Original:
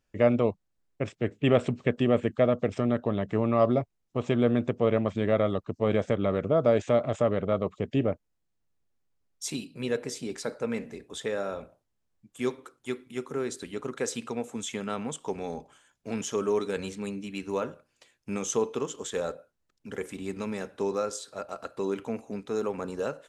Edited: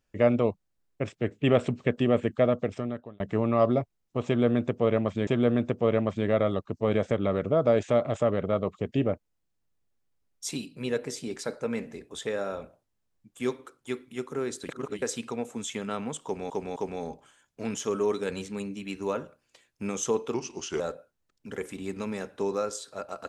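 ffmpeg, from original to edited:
-filter_complex "[0:a]asplit=9[a][b][c][d][e][f][g][h][i];[a]atrim=end=3.2,asetpts=PTS-STARTPTS,afade=t=out:st=2.52:d=0.68[j];[b]atrim=start=3.2:end=5.272,asetpts=PTS-STARTPTS,afade=t=in:d=0.004:c=hsin[k];[c]atrim=start=4.258:end=13.682[l];[d]atrim=start=13.678:end=14.012,asetpts=PTS-STARTPTS,areverse[m];[e]atrim=start=14.008:end=15.492[n];[f]atrim=start=15.228:end=15.492[o];[g]atrim=start=15.228:end=18.814[p];[h]atrim=start=18.81:end=19.2,asetpts=PTS-STARTPTS,asetrate=37485,aresample=44100,atrim=end_sample=20234,asetpts=PTS-STARTPTS[q];[i]atrim=start=19.196[r];[j][k]concat=n=2:v=0:a=1[s];[s][l]acrossfade=d=0.004:c1=hsin:c2=hsin[t];[t][m]acrossfade=d=0.004:c1=hsin:c2=hsin[u];[u][n]acrossfade=d=0.004:c1=hsin:c2=hsin[v];[v][o]acrossfade=d=0.004:c1=hsin:c2=hsin[w];[w][p]acrossfade=d=0.004:c1=hsin:c2=hsin[x];[x][q]acrossfade=d=0.004:c1=hsin:c2=hsin[y];[y][r]acrossfade=d=0.004:c1=hsin:c2=hsin"

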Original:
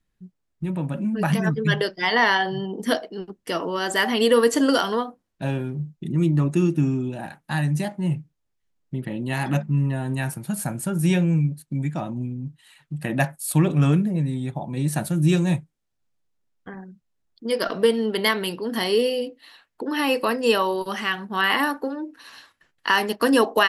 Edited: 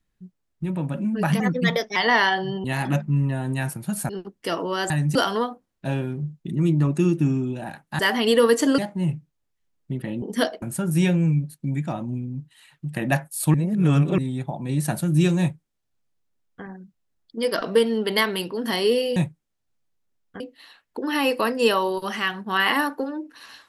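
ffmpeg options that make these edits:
-filter_complex "[0:a]asplit=15[a][b][c][d][e][f][g][h][i][j][k][l][m][n][o];[a]atrim=end=1.404[p];[b]atrim=start=1.4:end=2.04,asetpts=PTS-STARTPTS,asetrate=50274,aresample=44100[q];[c]atrim=start=2.036:end=2.722[r];[d]atrim=start=9.248:end=10.702[s];[e]atrim=start=3.118:end=3.932[t];[f]atrim=start=7.558:end=7.812[u];[g]atrim=start=4.718:end=7.562[v];[h]atrim=start=3.928:end=4.722[w];[i]atrim=start=7.808:end=9.252[x];[j]atrim=start=2.718:end=3.122[y];[k]atrim=start=10.698:end=13.622[z];[l]atrim=start=13.618:end=14.262,asetpts=PTS-STARTPTS,areverse[aa];[m]atrim=start=14.258:end=19.242[ab];[n]atrim=start=15.478:end=16.722[ac];[o]atrim=start=19.238[ad];[p][q]acrossfade=d=0.004:c1=hsin:c2=hsin[ae];[ae][r]acrossfade=d=0.004:c1=hsin:c2=hsin[af];[af][s]acrossfade=d=0.004:c1=hsin:c2=hsin[ag];[ag][t]acrossfade=d=0.004:c1=hsin:c2=hsin[ah];[ah][u]acrossfade=d=0.004:c1=hsin:c2=hsin[ai];[ai][v]acrossfade=d=0.004:c1=hsin:c2=hsin[aj];[aj][w]acrossfade=d=0.004:c1=hsin:c2=hsin[ak];[ak][x]acrossfade=d=0.004:c1=hsin:c2=hsin[al];[al][y]acrossfade=d=0.004:c1=hsin:c2=hsin[am];[am][z]acrossfade=d=0.004:c1=hsin:c2=hsin[an];[an][aa]acrossfade=d=0.004:c1=hsin:c2=hsin[ao];[ao][ab]acrossfade=d=0.004:c1=hsin:c2=hsin[ap];[ap][ac]acrossfade=d=0.004:c1=hsin:c2=hsin[aq];[aq][ad]acrossfade=d=0.004:c1=hsin:c2=hsin"

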